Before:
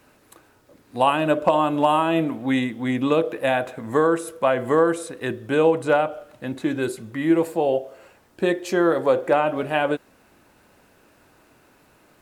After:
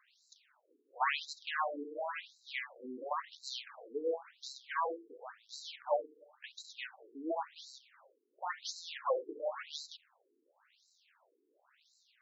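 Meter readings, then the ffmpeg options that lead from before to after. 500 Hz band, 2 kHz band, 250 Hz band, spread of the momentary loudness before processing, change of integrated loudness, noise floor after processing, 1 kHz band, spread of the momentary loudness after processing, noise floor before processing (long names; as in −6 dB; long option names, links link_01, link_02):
−19.5 dB, −14.0 dB, −27.0 dB, 9 LU, −18.0 dB, −77 dBFS, −15.5 dB, 15 LU, −57 dBFS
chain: -af "aeval=exprs='max(val(0),0)':channel_layout=same,equalizer=frequency=125:width_type=o:width=1:gain=4,equalizer=frequency=250:width_type=o:width=1:gain=-12,equalizer=frequency=4000:width_type=o:width=1:gain=5,equalizer=frequency=8000:width_type=o:width=1:gain=7,afftfilt=real='re*between(b*sr/1024,310*pow(5500/310,0.5+0.5*sin(2*PI*0.94*pts/sr))/1.41,310*pow(5500/310,0.5+0.5*sin(2*PI*0.94*pts/sr))*1.41)':imag='im*between(b*sr/1024,310*pow(5500/310,0.5+0.5*sin(2*PI*0.94*pts/sr))/1.41,310*pow(5500/310,0.5+0.5*sin(2*PI*0.94*pts/sr))*1.41)':win_size=1024:overlap=0.75,volume=-3.5dB"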